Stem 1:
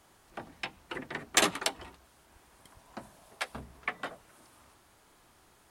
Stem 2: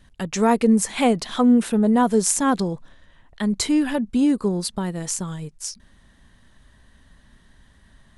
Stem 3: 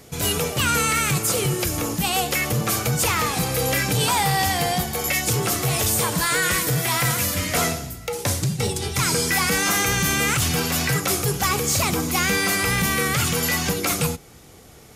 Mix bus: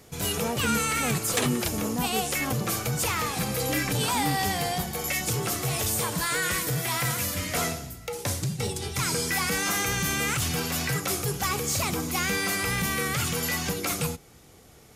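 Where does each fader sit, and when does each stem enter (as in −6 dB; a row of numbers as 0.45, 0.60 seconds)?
−4.0, −14.5, −6.0 decibels; 0.00, 0.00, 0.00 seconds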